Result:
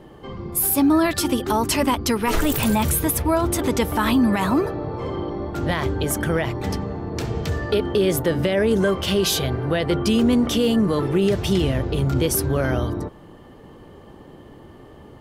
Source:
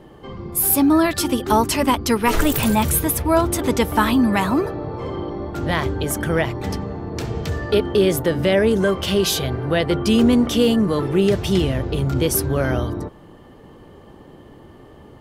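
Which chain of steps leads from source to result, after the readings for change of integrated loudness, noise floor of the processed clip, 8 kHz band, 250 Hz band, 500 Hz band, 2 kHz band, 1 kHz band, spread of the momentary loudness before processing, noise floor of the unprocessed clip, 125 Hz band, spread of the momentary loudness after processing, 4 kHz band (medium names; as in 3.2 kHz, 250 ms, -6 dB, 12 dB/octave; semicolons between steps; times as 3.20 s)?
-2.0 dB, -45 dBFS, -1.5 dB, -1.5 dB, -2.0 dB, -2.0 dB, -3.0 dB, 11 LU, -45 dBFS, -0.5 dB, 9 LU, -1.5 dB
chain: peak limiter -10.5 dBFS, peak gain reduction 6.5 dB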